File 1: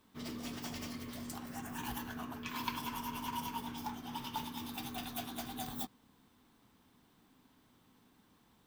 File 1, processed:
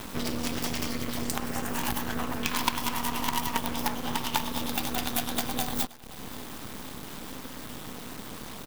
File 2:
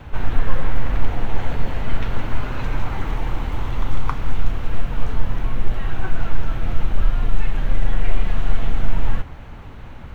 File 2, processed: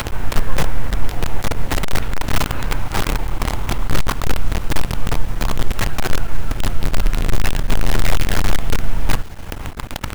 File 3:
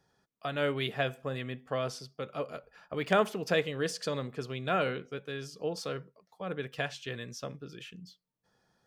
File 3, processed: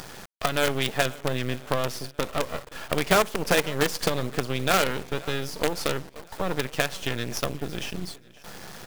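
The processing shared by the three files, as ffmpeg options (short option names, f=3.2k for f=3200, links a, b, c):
-af "acompressor=mode=upward:threshold=-13dB:ratio=2.5,acrusher=bits=4:dc=4:mix=0:aa=0.000001,aecho=1:1:524|1048|1572|2096:0.0794|0.0429|0.0232|0.0125"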